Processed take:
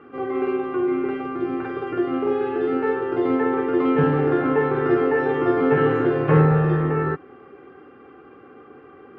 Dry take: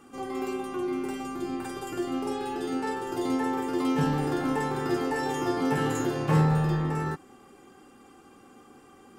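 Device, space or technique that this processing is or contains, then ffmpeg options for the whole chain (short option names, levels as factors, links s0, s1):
bass cabinet: -af "highpass=73,equalizer=f=210:t=q:w=4:g=-9,equalizer=f=430:t=q:w=4:g=7,equalizer=f=880:t=q:w=4:g=-6,equalizer=f=1400:t=q:w=4:g=3,lowpass=f=2400:w=0.5412,lowpass=f=2400:w=1.3066,volume=2.24"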